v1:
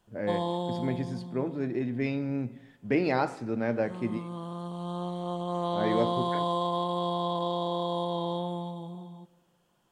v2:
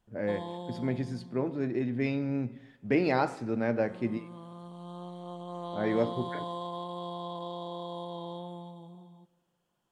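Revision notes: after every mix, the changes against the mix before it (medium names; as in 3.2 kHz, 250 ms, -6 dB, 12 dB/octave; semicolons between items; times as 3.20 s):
background -8.5 dB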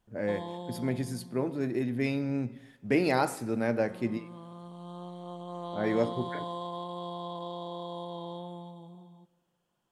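speech: remove distance through air 120 m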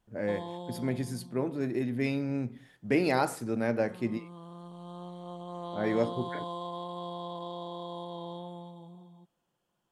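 reverb: off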